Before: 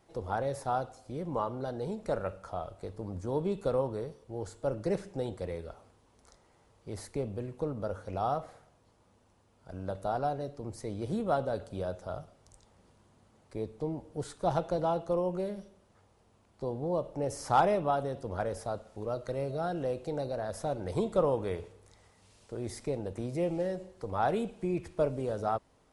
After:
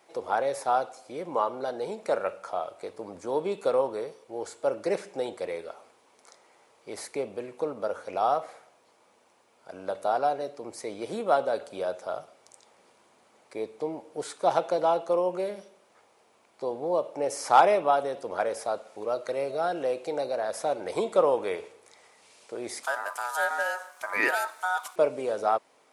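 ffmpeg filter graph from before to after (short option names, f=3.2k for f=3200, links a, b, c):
-filter_complex "[0:a]asettb=1/sr,asplit=3[a][b][c];[a]atrim=end=22.834[d];[b]atrim=start=22.83:end=24.96,asetpts=PTS-STARTPTS,afade=t=in:d=0.004:c=qsin,afade=t=out:st=2.126:d=0.004:c=qsin,aemphasis=mode=production:type=75fm,aeval=exprs='val(0)*sin(2*PI*1100*n/s)':c=same[e];[c]atrim=start=24.956[f];[d][e]acrossfade=d=0.004:c1=hsin:c2=qsin[g];[g][f]acrossfade=d=0.004:c1=qsin:c2=hsin,highpass=430,equalizer=f=2.3k:t=o:w=0.2:g=6.5,volume=7dB"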